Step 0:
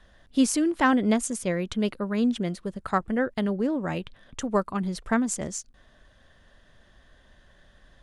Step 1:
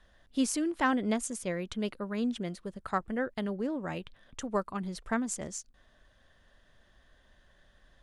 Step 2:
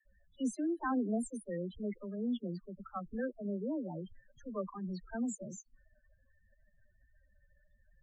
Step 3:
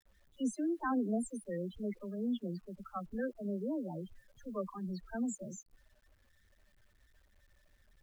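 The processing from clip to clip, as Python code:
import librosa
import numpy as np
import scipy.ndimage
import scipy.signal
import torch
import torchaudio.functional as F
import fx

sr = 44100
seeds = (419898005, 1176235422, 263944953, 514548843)

y1 = fx.peak_eq(x, sr, hz=150.0, db=-2.5, octaves=2.7)
y1 = y1 * 10.0 ** (-5.5 / 20.0)
y2 = fx.transient(y1, sr, attack_db=-7, sustain_db=1)
y2 = fx.spec_topn(y2, sr, count=8)
y2 = fx.dispersion(y2, sr, late='lows', ms=53.0, hz=350.0)
y2 = y2 * 10.0 ** (-2.5 / 20.0)
y3 = fx.quant_dither(y2, sr, seeds[0], bits=12, dither='none')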